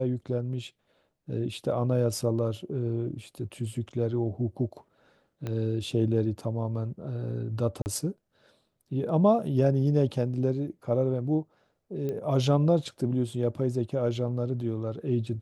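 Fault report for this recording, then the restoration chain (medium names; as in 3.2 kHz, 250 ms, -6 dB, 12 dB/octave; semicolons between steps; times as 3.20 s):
5.47 s: pop -21 dBFS
7.82–7.86 s: dropout 39 ms
12.09 s: pop -22 dBFS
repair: de-click; interpolate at 7.82 s, 39 ms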